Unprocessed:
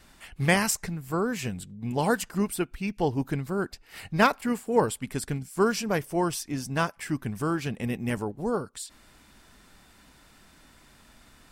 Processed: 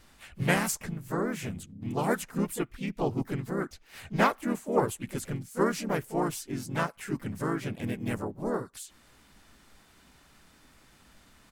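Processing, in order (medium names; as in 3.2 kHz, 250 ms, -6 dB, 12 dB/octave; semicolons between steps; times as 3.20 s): harmony voices -3 st -4 dB, +3 st -10 dB, +5 st -8 dB; dynamic bell 4.5 kHz, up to -5 dB, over -45 dBFS, Q 1.3; trim -5 dB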